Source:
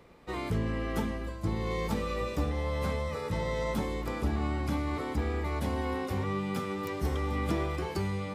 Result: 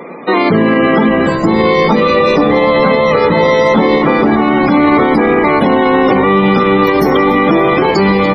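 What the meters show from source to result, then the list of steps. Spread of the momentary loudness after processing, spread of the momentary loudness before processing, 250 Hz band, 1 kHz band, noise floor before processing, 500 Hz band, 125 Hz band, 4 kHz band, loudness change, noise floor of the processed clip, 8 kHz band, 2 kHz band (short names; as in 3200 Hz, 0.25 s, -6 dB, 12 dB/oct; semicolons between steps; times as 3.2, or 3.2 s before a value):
1 LU, 2 LU, +23.5 dB, +25.0 dB, -38 dBFS, +25.0 dB, +13.0 dB, +22.0 dB, +22.5 dB, -13 dBFS, n/a, +24.5 dB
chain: HPF 190 Hz 24 dB/oct; loudest bins only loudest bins 64; frequency-shifting echo 0.287 s, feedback 62%, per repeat -66 Hz, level -17 dB; maximiser +30.5 dB; gain -1 dB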